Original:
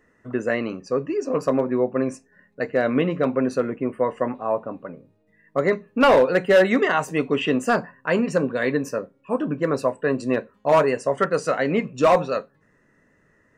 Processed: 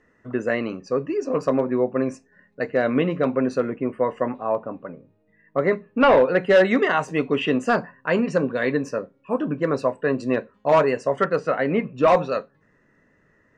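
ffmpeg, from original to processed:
ffmpeg -i in.wav -af "asetnsamples=nb_out_samples=441:pad=0,asendcmd='4.55 lowpass f 3100;6.43 lowpass f 5700;11.36 lowpass f 2700;12.08 lowpass f 5700',lowpass=6400" out.wav

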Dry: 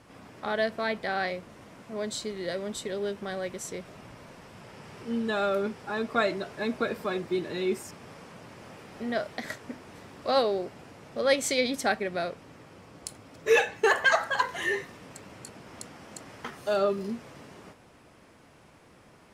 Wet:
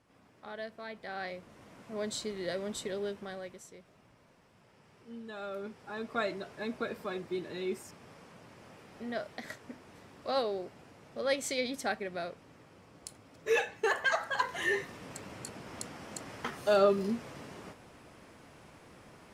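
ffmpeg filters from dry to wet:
ffmpeg -i in.wav -af "volume=13.5dB,afade=type=in:start_time=0.91:duration=1.13:silence=0.281838,afade=type=out:start_time=2.86:duration=0.82:silence=0.237137,afade=type=in:start_time=5.32:duration=0.91:silence=0.375837,afade=type=in:start_time=14.19:duration=0.95:silence=0.398107" out.wav

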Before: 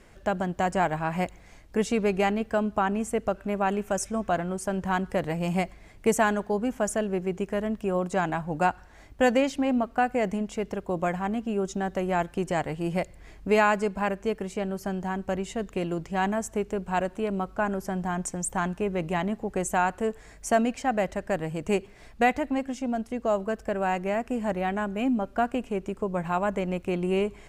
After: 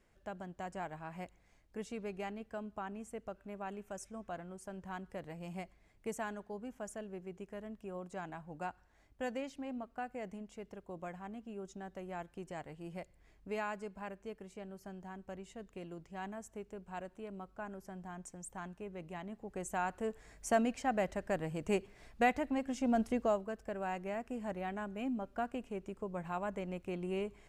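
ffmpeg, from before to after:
ffmpeg -i in.wav -af "volume=-0.5dB,afade=type=in:start_time=19.24:duration=1.27:silence=0.316228,afade=type=in:start_time=22.62:duration=0.44:silence=0.446684,afade=type=out:start_time=23.06:duration=0.36:silence=0.266073" out.wav

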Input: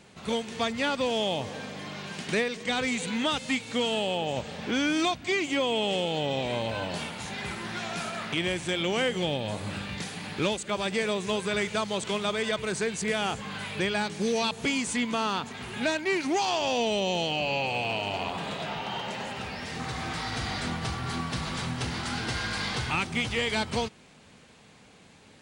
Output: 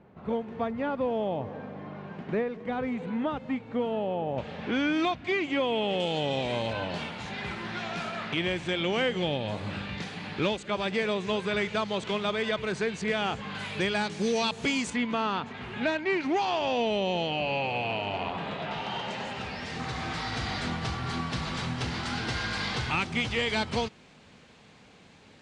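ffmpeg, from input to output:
ffmpeg -i in.wav -af "asetnsamples=nb_out_samples=441:pad=0,asendcmd='4.38 lowpass f 2800;6 lowpass f 6800;6.73 lowpass f 4100;13.55 lowpass f 7200;14.9 lowpass f 3000;18.71 lowpass f 6100',lowpass=1100" out.wav

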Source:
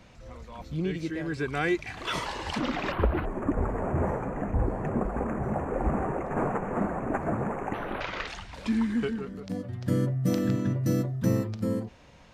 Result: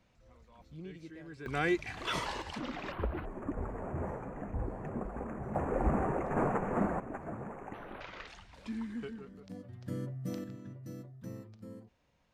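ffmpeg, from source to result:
ffmpeg -i in.wav -af "asetnsamples=nb_out_samples=441:pad=0,asendcmd='1.46 volume volume -3.5dB;2.42 volume volume -10dB;5.55 volume volume -2.5dB;7 volume volume -12.5dB;10.44 volume volume -19.5dB',volume=-16dB" out.wav

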